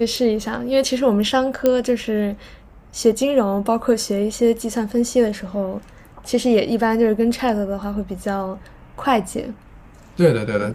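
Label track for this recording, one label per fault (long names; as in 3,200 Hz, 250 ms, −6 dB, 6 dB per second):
1.660000	1.660000	click −5 dBFS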